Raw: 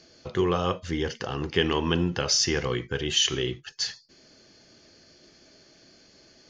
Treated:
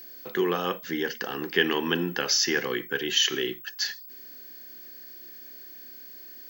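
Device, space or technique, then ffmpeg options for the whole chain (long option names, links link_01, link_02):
old television with a line whistle: -af "highpass=frequency=200:width=0.5412,highpass=frequency=200:width=1.3066,equalizer=frequency=600:width_type=q:width=4:gain=-6,equalizer=frequency=1100:width_type=q:width=4:gain=-3,equalizer=frequency=1700:width_type=q:width=4:gain=8,lowpass=frequency=7000:width=0.5412,lowpass=frequency=7000:width=1.3066,aeval=exprs='val(0)+0.00794*sin(2*PI*15734*n/s)':channel_layout=same"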